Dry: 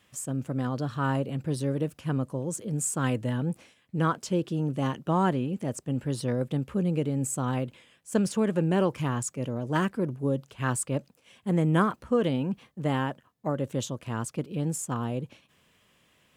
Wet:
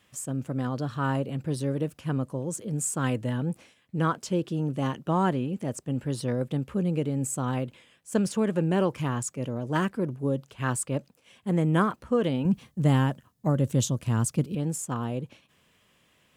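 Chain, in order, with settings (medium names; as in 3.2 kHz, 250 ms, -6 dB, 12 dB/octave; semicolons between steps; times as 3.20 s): 12.45–14.55 s: tone controls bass +10 dB, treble +8 dB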